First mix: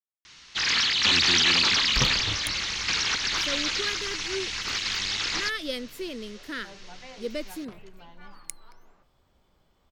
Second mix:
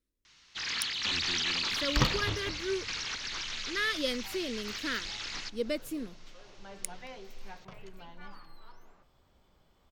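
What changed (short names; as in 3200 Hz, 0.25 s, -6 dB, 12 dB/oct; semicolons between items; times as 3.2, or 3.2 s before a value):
speech: entry -1.65 s; first sound -10.5 dB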